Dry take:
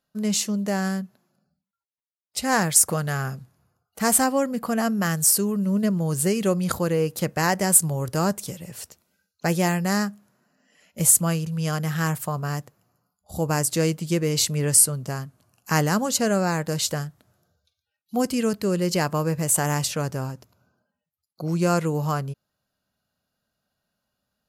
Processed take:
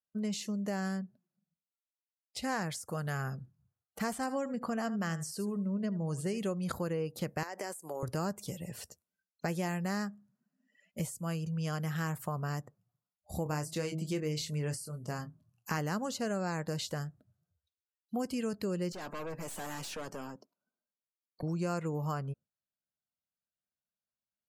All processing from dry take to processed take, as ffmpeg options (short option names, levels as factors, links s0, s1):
-filter_complex "[0:a]asettb=1/sr,asplit=3[s0][s1][s2];[s0]atrim=end=4.154[s3];[s1]atrim=start=4.15:end=6.38,asetpts=PTS-STARTPTS,afade=t=in:d=0.004:c=qsin,afade=t=out:st=2.226:d=0.004:c=qsin,lowpass=10000,aecho=1:1:78:0.178,atrim=end_sample=98343[s4];[s2]atrim=start=6.376[s5];[s3][s4]acrossfade=d=0.004:c1=hsin:c2=qsin[s6];[s6][s5]acrossfade=d=0.004:c1=qsin:c2=hsin,asettb=1/sr,asplit=3[s7][s8][s9];[s7]atrim=end=7.434[s10];[s8]atrim=start=7.43:end=8.03,asetpts=PTS-STARTPTS,afade=t=in:d=0.004:c=qsin,afade=t=out:st=0.596:d=0.004:c=qsin,highpass=f=300:w=0.5412,highpass=f=300:w=1.3066,acompressor=threshold=0.0398:ratio=6:attack=3.2:release=140:knee=1:detection=peak[s11];[s9]atrim=start=8.026[s12];[s10][s11]acrossfade=d=0.004:c1=hsin:c2=qsin[s13];[s13][s12]acrossfade=d=0.004:c1=qsin:c2=hsin,asettb=1/sr,asplit=3[s14][s15][s16];[s14]atrim=end=13.434[s17];[s15]atrim=start=13.43:end=15.78,asetpts=PTS-STARTPTS,afade=t=in:d=0.004:c=qsin,afade=t=out:st=2.346:d=0.004:c=qsin,asplit=2[s18][s19];[s19]adelay=26,volume=0.376[s20];[s18][s20]amix=inputs=2:normalize=0,atrim=end_sample=103635,bandreject=f=160.6:t=h:w=4,bandreject=f=321.2:t=h:w=4,bandreject=f=481.8:t=h:w=4,bandreject=f=642.4:t=h:w=4[s21];[s16]atrim=start=15.776[s22];[s17][s21]acrossfade=d=0.004:c1=hsin:c2=qsin[s23];[s23][s22]acrossfade=d=0.004:c1=qsin:c2=hsin,asettb=1/sr,asplit=3[s24][s25][s26];[s24]atrim=end=18.924[s27];[s25]atrim=start=18.92:end=21.43,asetpts=PTS-STARTPTS,afade=t=in:d=0.004:c=qsin,afade=t=out:st=2.506:d=0.004:c=qsin,highpass=f=200:w=0.5412,highpass=f=200:w=1.3066,aeval=exprs='(tanh(50.1*val(0)+0.3)-tanh(0.3))/50.1':c=same[s28];[s26]atrim=start=21.426[s29];[s27][s28]acrossfade=d=0.004:c1=hsin:c2=qsin[s30];[s30][s29]acrossfade=d=0.004:c1=qsin:c2=hsin,acompressor=threshold=0.0282:ratio=3,afftdn=nr=21:nf=-53,acrossover=split=5000[s31][s32];[s32]acompressor=threshold=0.00794:ratio=4:attack=1:release=60[s33];[s31][s33]amix=inputs=2:normalize=0,volume=0.708"